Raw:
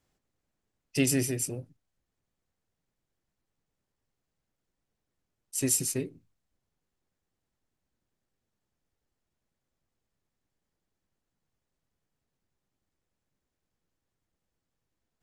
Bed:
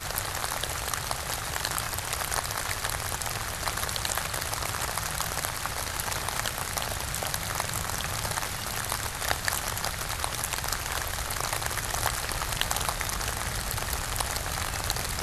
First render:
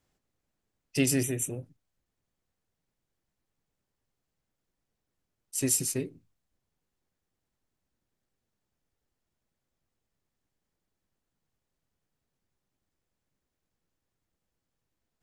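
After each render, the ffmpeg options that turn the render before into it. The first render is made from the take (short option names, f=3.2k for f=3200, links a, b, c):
-filter_complex "[0:a]asettb=1/sr,asplit=3[a][b][c];[a]atrim=end=1.234[d];[b]atrim=start=1.23:end=1.63,asetpts=PTS-STARTPTS,afade=t=in:d=0.004:c=qsin,afade=t=out:st=0.396:d=0.004:c=qsin,asuperstop=centerf=4800:order=8:qfactor=2.3[e];[c]atrim=start=1.626[f];[d][e]acrossfade=d=0.004:c1=hsin:c2=qsin[g];[g][f]acrossfade=d=0.004:c1=qsin:c2=hsin"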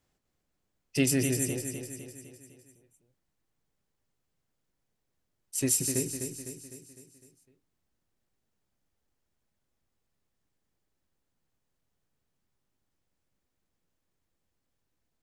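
-af "aecho=1:1:253|506|759|1012|1265|1518:0.447|0.232|0.121|0.0628|0.0327|0.017"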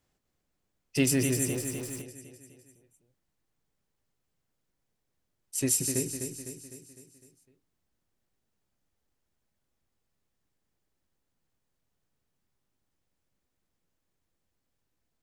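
-filter_complex "[0:a]asettb=1/sr,asplit=3[a][b][c];[a]atrim=end=0.974[d];[b]atrim=start=0.97:end=2.02,asetpts=PTS-STARTPTS,afade=t=in:d=0.004:c=qsin,afade=t=out:st=1.046:d=0.004:c=qsin,aeval=exprs='val(0)+0.5*0.00944*sgn(val(0))':c=same[e];[c]atrim=start=2.016[f];[d][e]acrossfade=d=0.004:c1=hsin:c2=qsin[g];[g][f]acrossfade=d=0.004:c1=qsin:c2=hsin"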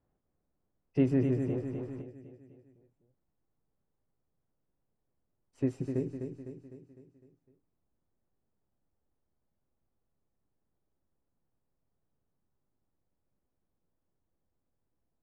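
-af "lowpass=1k"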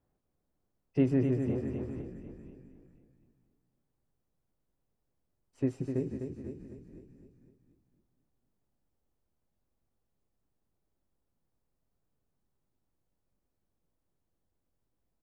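-filter_complex "[0:a]asplit=4[a][b][c][d];[b]adelay=484,afreqshift=-46,volume=-13dB[e];[c]adelay=968,afreqshift=-92,volume=-22.6dB[f];[d]adelay=1452,afreqshift=-138,volume=-32.3dB[g];[a][e][f][g]amix=inputs=4:normalize=0"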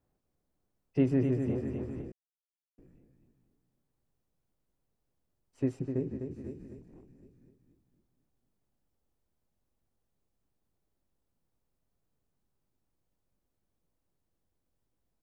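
-filter_complex "[0:a]asettb=1/sr,asplit=3[a][b][c];[a]atrim=end=5.794[d];[b]atrim=start=5.79:end=6.31,asetpts=PTS-STARTPTS,afade=t=in:d=0.004:c=qsin,afade=t=out:st=0.516:d=0.004:c=qsin,aemphasis=mode=reproduction:type=75kf[e];[c]atrim=start=6.306[f];[d][e]acrossfade=d=0.004:c1=hsin:c2=qsin[g];[g][f]acrossfade=d=0.004:c1=qsin:c2=hsin,asettb=1/sr,asplit=3[h][i][j];[h]atrim=end=6.814[k];[i]atrim=start=6.81:end=7.23,asetpts=PTS-STARTPTS,afade=t=in:d=0.004:c=qsin,afade=t=out:st=0.416:d=0.004:c=qsin,aeval=exprs='(tanh(251*val(0)+0.4)-tanh(0.4))/251':c=same[l];[j]atrim=start=7.226[m];[k][l]acrossfade=d=0.004:c1=hsin:c2=qsin[n];[n][m]acrossfade=d=0.004:c1=qsin:c2=hsin,asplit=3[o][p][q];[o]atrim=end=2.12,asetpts=PTS-STARTPTS,afade=t=out:st=2.116:d=0.004:c=hsin[r];[p]atrim=start=2.12:end=2.78,asetpts=PTS-STARTPTS,volume=0[s];[q]atrim=start=2.78,asetpts=PTS-STARTPTS,afade=t=in:d=0.004:c=hsin[t];[r][s][t]concat=n=3:v=0:a=1"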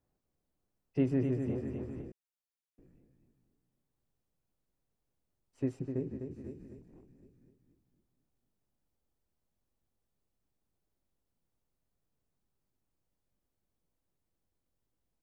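-af "volume=-3dB"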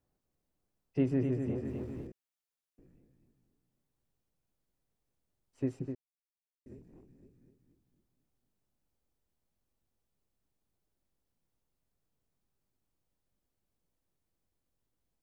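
-filter_complex "[0:a]asettb=1/sr,asplit=3[a][b][c];[a]atrim=end=1.654[d];[b]atrim=start=1.65:end=2.07,asetpts=PTS-STARTPTS,afade=t=in:d=0.004:c=qsin,afade=t=out:st=0.416:d=0.004:c=qsin,aeval=exprs='val(0)+0.5*0.00141*sgn(val(0))':c=same[e];[c]atrim=start=2.066[f];[d][e]acrossfade=d=0.004:c1=hsin:c2=qsin[g];[g][f]acrossfade=d=0.004:c1=qsin:c2=hsin,asplit=3[h][i][j];[h]atrim=end=5.95,asetpts=PTS-STARTPTS,afade=t=out:st=5.946:d=0.004:c=hsin[k];[i]atrim=start=5.95:end=6.66,asetpts=PTS-STARTPTS,volume=0[l];[j]atrim=start=6.66,asetpts=PTS-STARTPTS,afade=t=in:d=0.004:c=hsin[m];[k][l][m]concat=n=3:v=0:a=1"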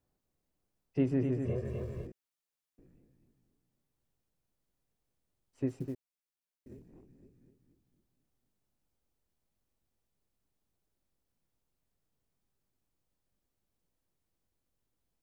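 -filter_complex "[0:a]asettb=1/sr,asplit=3[a][b][c];[a]atrim=end=1.454[d];[b]atrim=start=1.45:end=2.06,asetpts=PTS-STARTPTS,afade=t=in:d=0.004:c=qsin,afade=t=out:st=0.606:d=0.004:c=qsin,aecho=1:1:1.8:0.98,atrim=end_sample=26901[e];[c]atrim=start=2.056[f];[d][e]acrossfade=d=0.004:c1=hsin:c2=qsin[g];[g][f]acrossfade=d=0.004:c1=qsin:c2=hsin,asplit=3[h][i][j];[h]afade=t=out:st=5.68:d=0.02[k];[i]acrusher=bits=8:mode=log:mix=0:aa=0.000001,afade=t=in:st=5.68:d=0.02,afade=t=out:st=6.86:d=0.02[l];[j]afade=t=in:st=6.86:d=0.02[m];[k][l][m]amix=inputs=3:normalize=0"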